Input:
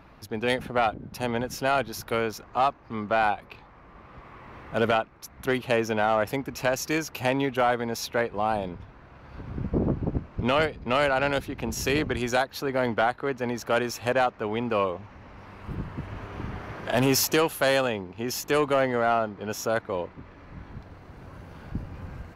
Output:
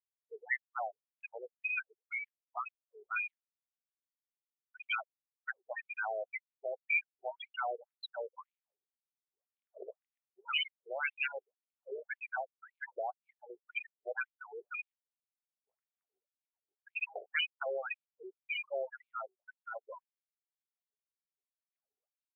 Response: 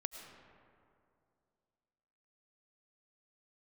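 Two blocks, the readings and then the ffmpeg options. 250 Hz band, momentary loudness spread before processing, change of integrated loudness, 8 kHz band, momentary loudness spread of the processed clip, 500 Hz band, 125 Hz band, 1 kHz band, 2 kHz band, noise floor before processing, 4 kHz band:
under -35 dB, 17 LU, -12.0 dB, under -40 dB, 17 LU, -18.0 dB, under -40 dB, -16.5 dB, -7.5 dB, -51 dBFS, -9.5 dB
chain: -filter_complex "[0:a]afftfilt=real='re*gte(hypot(re,im),0.0891)':imag='im*gte(hypot(re,im),0.0891)':win_size=1024:overlap=0.75,firequalizer=gain_entry='entry(130,0);entry(400,-20);entry(930,-23);entry(2200,-12)':delay=0.05:min_phase=1,acrossover=split=110|2000[a][b][c];[a]alimiter=level_in=9.5dB:limit=-24dB:level=0:latency=1:release=182,volume=-9.5dB[d];[d][b][c]amix=inputs=3:normalize=0,crystalizer=i=9:c=0,aresample=16000,asoftclip=type=hard:threshold=-18.5dB,aresample=44100,acontrast=49,afftfilt=real='re*between(b*sr/1024,510*pow(3200/510,0.5+0.5*sin(2*PI*1.9*pts/sr))/1.41,510*pow(3200/510,0.5+0.5*sin(2*PI*1.9*pts/sr))*1.41)':imag='im*between(b*sr/1024,510*pow(3200/510,0.5+0.5*sin(2*PI*1.9*pts/sr))/1.41,510*pow(3200/510,0.5+0.5*sin(2*PI*1.9*pts/sr))*1.41)':win_size=1024:overlap=0.75,volume=1dB"

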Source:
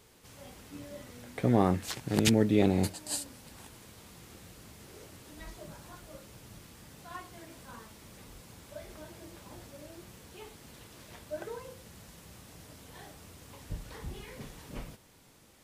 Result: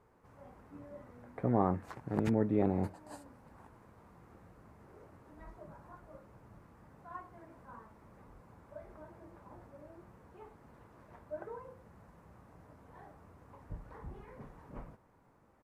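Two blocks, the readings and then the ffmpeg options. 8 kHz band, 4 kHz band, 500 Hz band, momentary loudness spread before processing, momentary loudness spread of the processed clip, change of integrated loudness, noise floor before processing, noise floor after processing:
-25.5 dB, under -20 dB, -4.5 dB, 25 LU, 24 LU, -5.5 dB, -60 dBFS, -66 dBFS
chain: -af "firequalizer=gain_entry='entry(350,0);entry(1000,5);entry(3200,-20)':delay=0.05:min_phase=1,volume=-5.5dB"

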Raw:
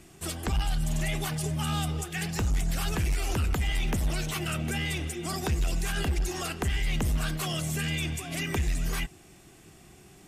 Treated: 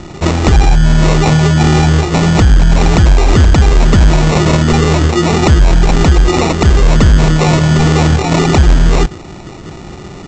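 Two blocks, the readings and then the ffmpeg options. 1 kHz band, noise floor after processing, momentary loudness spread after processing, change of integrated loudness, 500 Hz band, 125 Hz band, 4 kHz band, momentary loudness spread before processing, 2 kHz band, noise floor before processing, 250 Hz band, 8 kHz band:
+21.5 dB, -30 dBFS, 5 LU, +20.0 dB, +23.5 dB, +21.5 dB, +15.0 dB, 3 LU, +15.5 dB, -54 dBFS, +22.0 dB, +12.5 dB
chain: -af "highshelf=f=4.1k:g=-9,aresample=16000,acrusher=samples=10:mix=1:aa=0.000001,aresample=44100,alimiter=level_in=26dB:limit=-1dB:release=50:level=0:latency=1,volume=-1dB"

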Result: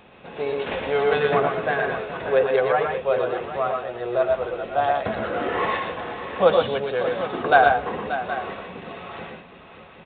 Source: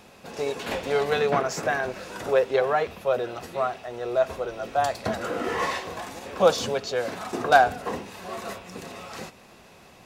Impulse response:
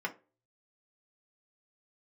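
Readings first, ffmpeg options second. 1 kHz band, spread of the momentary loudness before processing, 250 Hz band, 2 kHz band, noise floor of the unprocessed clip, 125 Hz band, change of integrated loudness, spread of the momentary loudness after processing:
+3.0 dB, 15 LU, +2.0 dB, +3.5 dB, -51 dBFS, +2.5 dB, +3.0 dB, 16 LU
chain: -filter_complex "[0:a]aecho=1:1:108|122|583|770:0.398|0.562|0.266|0.224,asplit=2[a][b];[1:a]atrim=start_sample=2205[c];[b][c]afir=irnorm=-1:irlink=0,volume=-18dB[d];[a][d]amix=inputs=2:normalize=0,aresample=8000,aresample=44100"

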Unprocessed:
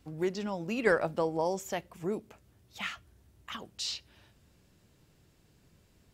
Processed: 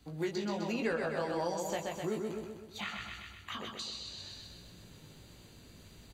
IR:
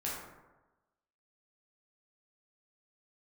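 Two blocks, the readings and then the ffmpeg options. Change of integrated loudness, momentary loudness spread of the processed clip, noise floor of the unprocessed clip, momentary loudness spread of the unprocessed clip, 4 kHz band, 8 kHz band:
-4.0 dB, 21 LU, -66 dBFS, 15 LU, -1.0 dB, -2.0 dB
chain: -filter_complex "[0:a]equalizer=f=4.4k:w=1.6:g=7,areverse,acompressor=mode=upward:threshold=-48dB:ratio=2.5,areverse,flanger=delay=17:depth=3.2:speed=1.3,aecho=1:1:127|254|381|508|635|762|889:0.562|0.298|0.158|0.0837|0.0444|0.0235|0.0125,acrossover=split=170|1300[a][b][c];[a]acompressor=threshold=-54dB:ratio=4[d];[b]acompressor=threshold=-37dB:ratio=4[e];[c]acompressor=threshold=-46dB:ratio=4[f];[d][e][f]amix=inputs=3:normalize=0,asuperstop=centerf=5300:order=8:qfactor=7,volume=4dB"

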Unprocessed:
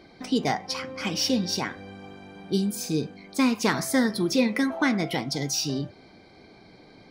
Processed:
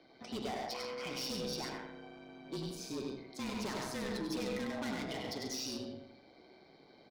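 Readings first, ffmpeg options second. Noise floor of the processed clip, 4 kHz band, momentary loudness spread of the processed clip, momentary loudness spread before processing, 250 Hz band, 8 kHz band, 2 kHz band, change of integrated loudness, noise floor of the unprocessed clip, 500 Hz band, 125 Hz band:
-62 dBFS, -11.5 dB, 12 LU, 12 LU, -15.5 dB, -14.0 dB, -14.5 dB, -14.0 dB, -52 dBFS, -11.0 dB, -15.0 dB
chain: -filter_complex "[0:a]acrossover=split=280 5800:gain=0.158 1 0.2[a][b][c];[a][b][c]amix=inputs=3:normalize=0,asplit=2[d][e];[e]aecho=0:1:99.13|137:0.562|0.316[f];[d][f]amix=inputs=2:normalize=0,asoftclip=type=hard:threshold=-28.5dB,asplit=2[g][h];[h]adelay=82,lowpass=f=2.8k:p=1,volume=-6dB,asplit=2[i][j];[j]adelay=82,lowpass=f=2.8k:p=1,volume=0.47,asplit=2[k][l];[l]adelay=82,lowpass=f=2.8k:p=1,volume=0.47,asplit=2[m][n];[n]adelay=82,lowpass=f=2.8k:p=1,volume=0.47,asplit=2[o][p];[p]adelay=82,lowpass=f=2.8k:p=1,volume=0.47,asplit=2[q][r];[r]adelay=82,lowpass=f=2.8k:p=1,volume=0.47[s];[i][k][m][o][q][s]amix=inputs=6:normalize=0[t];[g][t]amix=inputs=2:normalize=0,tremolo=f=130:d=0.462,afreqshift=-31,equalizer=f=1.7k:t=o:w=1.3:g=-4.5,volume=-6dB"

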